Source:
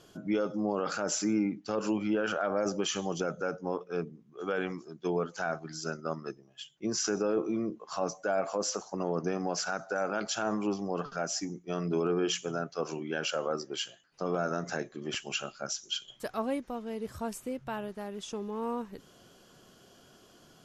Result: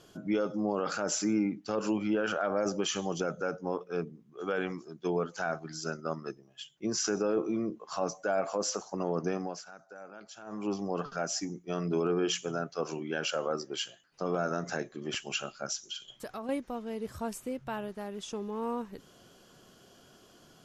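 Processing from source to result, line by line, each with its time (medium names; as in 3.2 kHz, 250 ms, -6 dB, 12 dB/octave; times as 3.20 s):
9.34–10.75 s: dip -16 dB, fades 0.29 s
15.84–16.49 s: compression, threshold -35 dBFS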